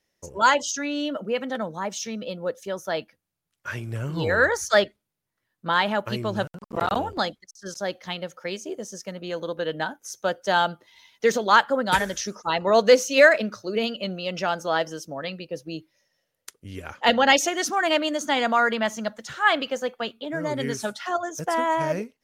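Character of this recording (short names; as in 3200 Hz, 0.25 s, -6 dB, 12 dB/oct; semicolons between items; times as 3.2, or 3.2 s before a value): noise floor -81 dBFS; spectral tilt -3.5 dB/oct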